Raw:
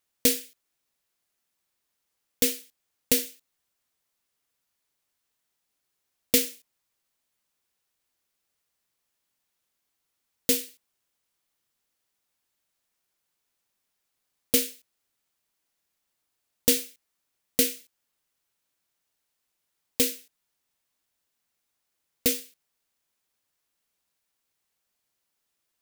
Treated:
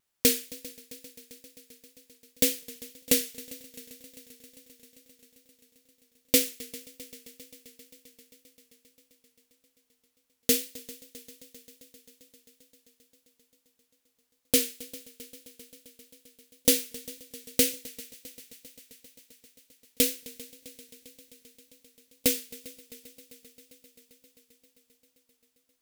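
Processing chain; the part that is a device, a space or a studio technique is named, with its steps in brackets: multi-head tape echo (multi-head delay 132 ms, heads second and third, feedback 73%, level -21 dB; wow and flutter)

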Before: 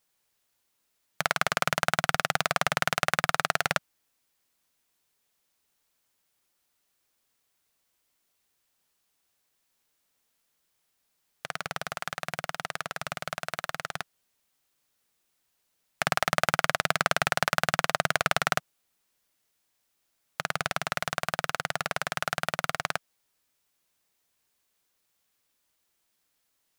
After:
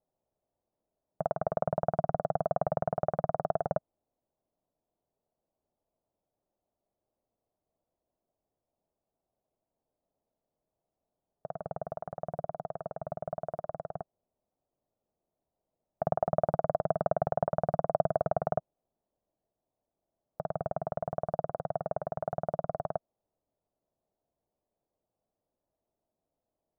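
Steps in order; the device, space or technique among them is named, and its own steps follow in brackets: under water (low-pass 780 Hz 24 dB/octave; peaking EQ 640 Hz +7 dB 0.36 oct)

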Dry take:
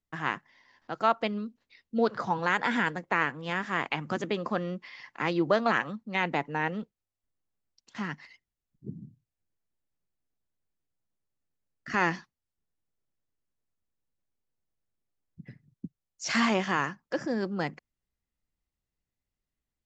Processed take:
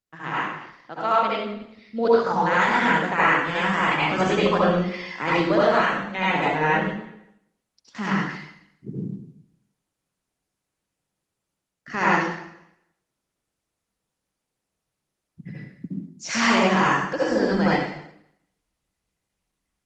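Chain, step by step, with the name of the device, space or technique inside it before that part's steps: far-field microphone of a smart speaker (reverberation RT60 0.75 s, pre-delay 63 ms, DRR -8 dB; high-pass 110 Hz 6 dB/octave; level rider gain up to 10 dB; trim -5 dB; Opus 20 kbps 48 kHz)

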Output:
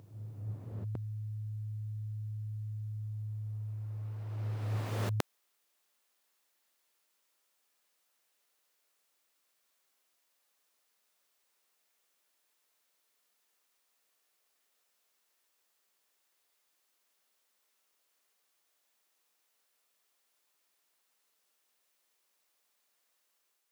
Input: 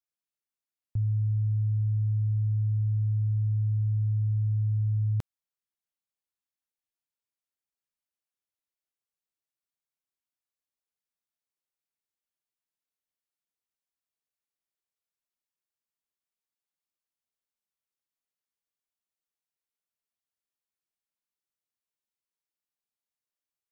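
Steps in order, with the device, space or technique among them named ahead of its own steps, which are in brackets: ghost voice (reverse; reverberation RT60 2.7 s, pre-delay 111 ms, DRR -2 dB; reverse; high-pass 340 Hz 12 dB/octave); trim +13.5 dB

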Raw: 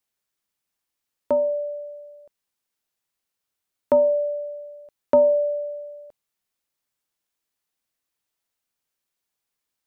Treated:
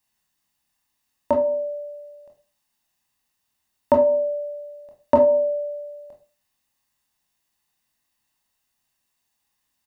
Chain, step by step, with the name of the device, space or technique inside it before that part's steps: microphone above a desk (comb 1.1 ms, depth 52%; reverberation RT60 0.35 s, pre-delay 20 ms, DRR 1.5 dB); trim +4 dB

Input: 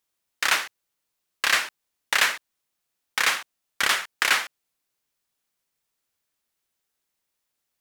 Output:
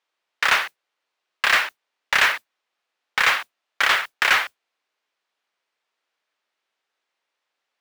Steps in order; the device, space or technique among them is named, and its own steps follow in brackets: carbon microphone (band-pass 470–3300 Hz; saturation -17 dBFS, distortion -13 dB; modulation noise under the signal 21 dB); trim +7.5 dB

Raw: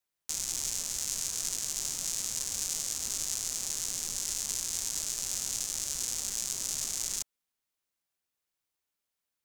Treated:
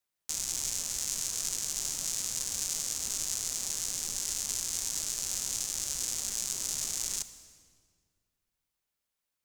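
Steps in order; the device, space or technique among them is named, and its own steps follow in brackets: saturated reverb return (on a send at -10 dB: reverberation RT60 1.8 s, pre-delay 27 ms + saturation -33.5 dBFS, distortion -13 dB)

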